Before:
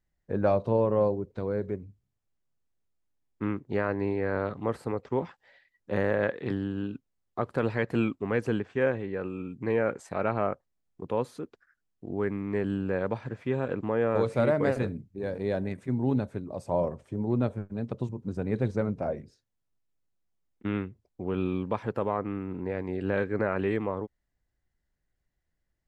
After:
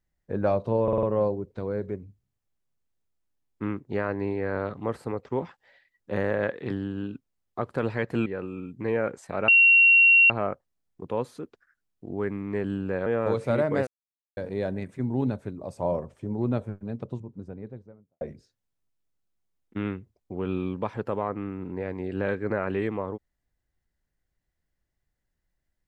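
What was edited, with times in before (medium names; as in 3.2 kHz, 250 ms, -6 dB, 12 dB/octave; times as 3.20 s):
0.83 s: stutter 0.05 s, 5 plays
8.06–9.08 s: delete
10.30 s: add tone 2.74 kHz -13 dBFS 0.82 s
13.06–13.95 s: delete
14.76–15.26 s: mute
17.50–19.10 s: studio fade out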